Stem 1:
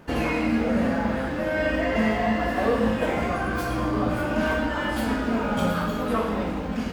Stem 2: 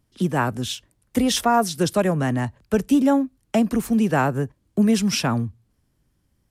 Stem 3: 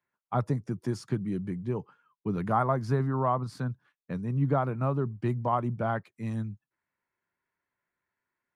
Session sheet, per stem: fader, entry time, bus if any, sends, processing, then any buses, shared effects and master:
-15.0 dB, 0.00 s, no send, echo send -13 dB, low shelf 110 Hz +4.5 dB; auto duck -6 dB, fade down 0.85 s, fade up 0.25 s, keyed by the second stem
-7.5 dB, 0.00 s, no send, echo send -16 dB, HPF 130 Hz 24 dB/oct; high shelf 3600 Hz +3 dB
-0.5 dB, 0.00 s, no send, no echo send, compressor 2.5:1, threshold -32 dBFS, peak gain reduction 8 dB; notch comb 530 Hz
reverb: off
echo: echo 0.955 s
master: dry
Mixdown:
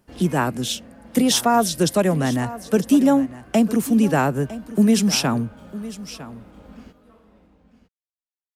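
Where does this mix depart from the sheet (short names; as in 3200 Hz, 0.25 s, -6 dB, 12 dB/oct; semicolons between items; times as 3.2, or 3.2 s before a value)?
stem 2 -7.5 dB -> +2.5 dB; stem 3: muted; master: extra bell 1400 Hz -3 dB 2.2 oct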